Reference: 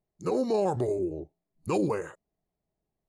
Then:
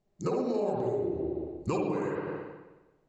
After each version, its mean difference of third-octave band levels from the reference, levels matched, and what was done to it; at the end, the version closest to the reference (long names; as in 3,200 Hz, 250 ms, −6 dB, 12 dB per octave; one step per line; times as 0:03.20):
7.0 dB: mains-hum notches 50/100 Hz
spring reverb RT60 1.1 s, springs 54/59 ms, chirp 65 ms, DRR −3.5 dB
downward compressor 6 to 1, threshold −34 dBFS, peak gain reduction 17.5 dB
Chebyshev low-pass filter 7,700 Hz, order 5
level +6 dB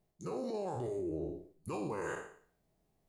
5.0 dB: peak hold with a decay on every bin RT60 0.52 s
brickwall limiter −24 dBFS, peak gain reduction 10 dB
reversed playback
downward compressor 6 to 1, threshold −42 dBFS, peak gain reduction 13 dB
reversed playback
flutter between parallel walls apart 9.8 metres, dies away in 0.29 s
level +5.5 dB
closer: second